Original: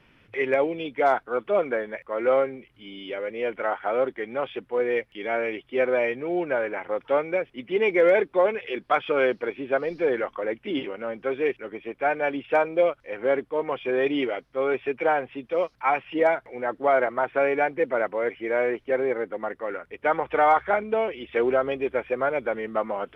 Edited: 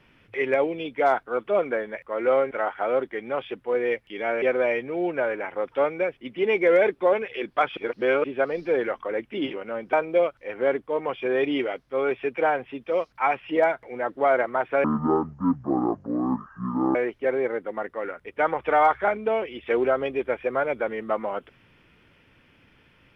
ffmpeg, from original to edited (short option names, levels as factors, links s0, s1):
-filter_complex "[0:a]asplit=8[s0][s1][s2][s3][s4][s5][s6][s7];[s0]atrim=end=2.512[s8];[s1]atrim=start=3.558:end=5.472[s9];[s2]atrim=start=5.748:end=9.102[s10];[s3]atrim=start=9.098:end=9.572,asetpts=PTS-STARTPTS,areverse[s11];[s4]atrim=start=9.568:end=11.262[s12];[s5]atrim=start=12.558:end=17.474[s13];[s6]atrim=start=17.47:end=18.61,asetpts=PTS-STARTPTS,asetrate=23814,aresample=44100[s14];[s7]atrim=start=18.606[s15];[s8][s9]acrossfade=d=0.004:c1=hsin:c2=hsin[s16];[s16][s10]acrossfade=d=0.004:c1=hsin:c2=hsin[s17];[s17][s11]acrossfade=d=0.004:c1=hsin:c2=hsin[s18];[s18][s12]acrossfade=d=0.004:c1=hsin:c2=hsin[s19];[s19][s13]acrossfade=d=0.004:c1=hsin:c2=hsin[s20];[s20][s14]acrossfade=d=0.004:c1=hsin:c2=hsin[s21];[s21][s15]acrossfade=d=0.004:c1=hsin:c2=hsin"